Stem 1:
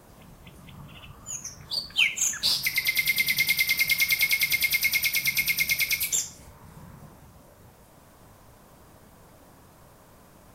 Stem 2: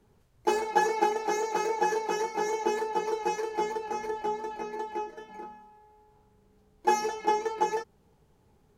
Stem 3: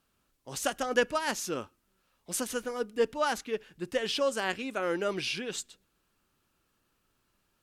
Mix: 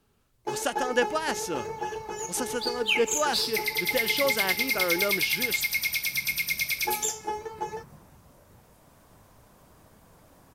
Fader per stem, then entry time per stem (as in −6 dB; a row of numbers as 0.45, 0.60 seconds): −3.5, −6.5, +1.5 decibels; 0.90, 0.00, 0.00 seconds